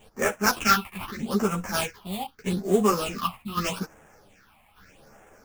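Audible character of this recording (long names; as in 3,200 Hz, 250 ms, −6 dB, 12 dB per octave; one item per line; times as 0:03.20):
aliases and images of a low sample rate 4,000 Hz, jitter 20%
phaser sweep stages 6, 0.81 Hz, lowest notch 400–4,400 Hz
tremolo saw down 0.84 Hz, depth 55%
a shimmering, thickened sound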